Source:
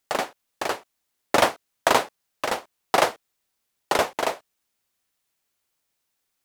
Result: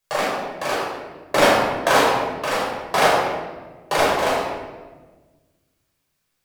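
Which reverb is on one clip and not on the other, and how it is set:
rectangular room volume 1,000 cubic metres, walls mixed, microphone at 5.5 metres
level −5 dB

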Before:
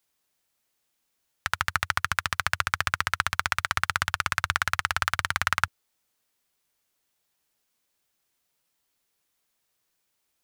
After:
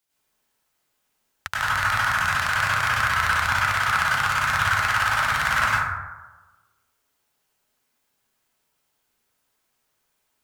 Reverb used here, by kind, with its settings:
dense smooth reverb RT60 1.2 s, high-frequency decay 0.35×, pre-delay 85 ms, DRR −9.5 dB
level −4 dB

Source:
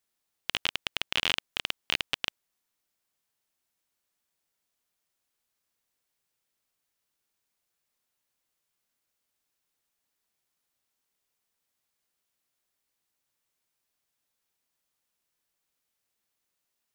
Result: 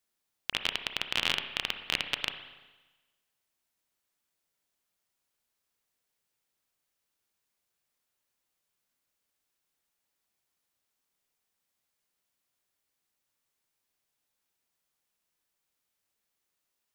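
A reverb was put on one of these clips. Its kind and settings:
spring reverb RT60 1.2 s, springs 31/57 ms, chirp 60 ms, DRR 7.5 dB
level −1 dB

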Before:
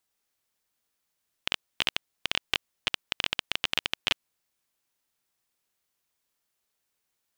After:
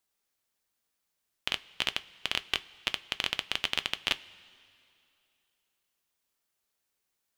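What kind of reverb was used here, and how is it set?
coupled-rooms reverb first 0.2 s, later 2.6 s, from −18 dB, DRR 12 dB
level −2 dB

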